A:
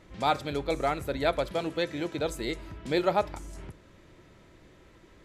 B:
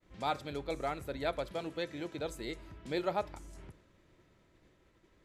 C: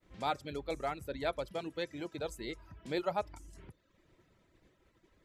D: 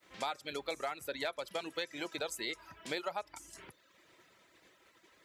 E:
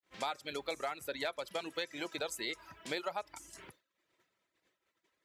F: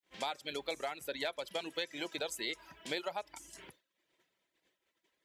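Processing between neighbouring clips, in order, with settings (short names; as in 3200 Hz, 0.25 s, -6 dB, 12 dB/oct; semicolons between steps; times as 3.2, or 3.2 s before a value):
expander -51 dBFS; gain -8 dB
reverb removal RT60 0.7 s
HPF 1200 Hz 6 dB/oct; compressor 10:1, threshold -45 dBFS, peak gain reduction 13.5 dB; hard clip -35.5 dBFS, distortion -32 dB; gain +11.5 dB
expander -54 dBFS
thirty-one-band EQ 100 Hz -11 dB, 1250 Hz -6 dB, 3150 Hz +4 dB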